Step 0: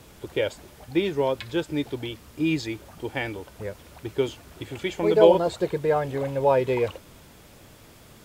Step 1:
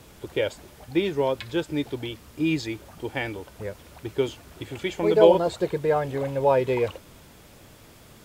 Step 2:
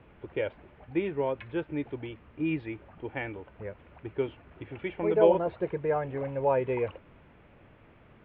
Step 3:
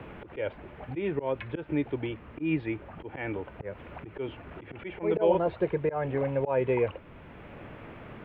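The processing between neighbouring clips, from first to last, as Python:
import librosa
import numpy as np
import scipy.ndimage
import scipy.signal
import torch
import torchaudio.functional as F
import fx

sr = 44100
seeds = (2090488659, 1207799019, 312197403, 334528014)

y1 = x
y2 = scipy.signal.sosfilt(scipy.signal.butter(6, 2700.0, 'lowpass', fs=sr, output='sos'), y1)
y2 = y2 * librosa.db_to_amplitude(-5.5)
y3 = fx.auto_swell(y2, sr, attack_ms=162.0)
y3 = fx.band_squash(y3, sr, depth_pct=40)
y3 = y3 * librosa.db_to_amplitude(4.5)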